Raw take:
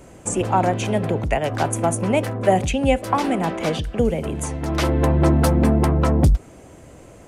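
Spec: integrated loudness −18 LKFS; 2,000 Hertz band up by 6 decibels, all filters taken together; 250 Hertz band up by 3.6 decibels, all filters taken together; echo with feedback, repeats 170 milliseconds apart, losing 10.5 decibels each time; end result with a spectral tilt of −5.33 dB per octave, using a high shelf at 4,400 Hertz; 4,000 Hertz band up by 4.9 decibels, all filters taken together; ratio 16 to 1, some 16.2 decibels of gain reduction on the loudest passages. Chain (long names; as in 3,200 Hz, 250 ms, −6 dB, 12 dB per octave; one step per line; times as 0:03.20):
parametric band 250 Hz +4.5 dB
parametric band 2,000 Hz +7 dB
parametric band 4,000 Hz +8 dB
high-shelf EQ 4,400 Hz −8.5 dB
downward compressor 16 to 1, threshold −26 dBFS
repeating echo 170 ms, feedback 30%, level −10.5 dB
level +12.5 dB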